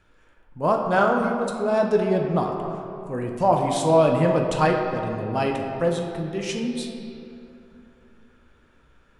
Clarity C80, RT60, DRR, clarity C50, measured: 4.5 dB, 2.8 s, 1.0 dB, 3.5 dB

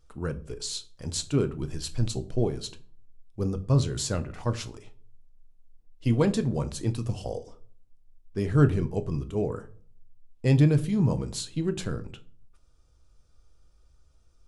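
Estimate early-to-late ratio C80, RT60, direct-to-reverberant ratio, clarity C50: 22.5 dB, 0.50 s, 9.0 dB, 18.5 dB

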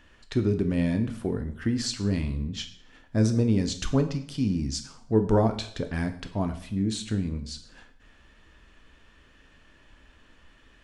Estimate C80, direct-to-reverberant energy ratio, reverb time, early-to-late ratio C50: 15.0 dB, 6.5 dB, 0.60 s, 12.0 dB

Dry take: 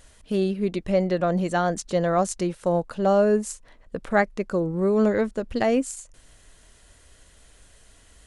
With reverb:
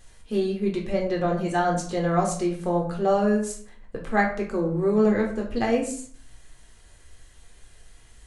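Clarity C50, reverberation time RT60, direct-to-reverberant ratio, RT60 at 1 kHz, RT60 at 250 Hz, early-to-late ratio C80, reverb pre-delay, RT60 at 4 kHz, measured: 7.5 dB, 0.50 s, −0.5 dB, 0.50 s, 0.75 s, 11.5 dB, 3 ms, 0.35 s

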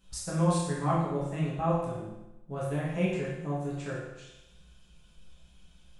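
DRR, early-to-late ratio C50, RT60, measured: −7.5 dB, 0.5 dB, 0.95 s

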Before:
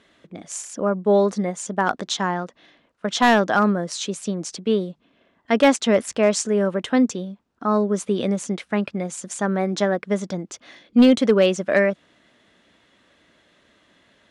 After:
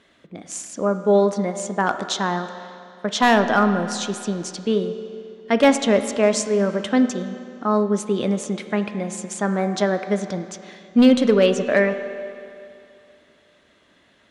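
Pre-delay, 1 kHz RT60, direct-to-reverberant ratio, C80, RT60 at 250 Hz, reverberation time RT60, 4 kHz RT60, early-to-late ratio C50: 13 ms, 2.5 s, 8.0 dB, 10.0 dB, 2.5 s, 2.5 s, 2.3 s, 9.0 dB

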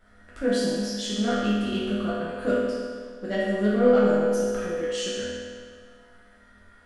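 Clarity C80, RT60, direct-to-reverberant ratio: −0.5 dB, 1.8 s, −9.5 dB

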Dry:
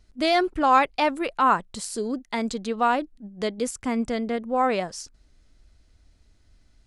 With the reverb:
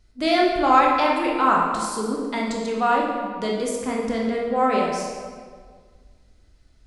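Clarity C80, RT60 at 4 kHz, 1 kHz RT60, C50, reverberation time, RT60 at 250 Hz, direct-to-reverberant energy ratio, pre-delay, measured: 3.0 dB, 1.2 s, 1.7 s, 1.0 dB, 1.8 s, 2.0 s, −2.0 dB, 16 ms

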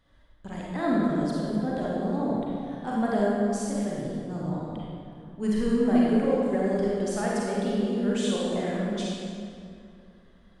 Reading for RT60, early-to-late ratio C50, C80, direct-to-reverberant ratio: 2.4 s, −3.5 dB, −1.5 dB, −5.5 dB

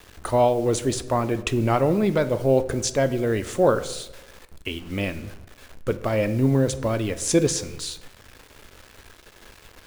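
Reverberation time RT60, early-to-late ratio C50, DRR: 1.0 s, 15.0 dB, 11.0 dB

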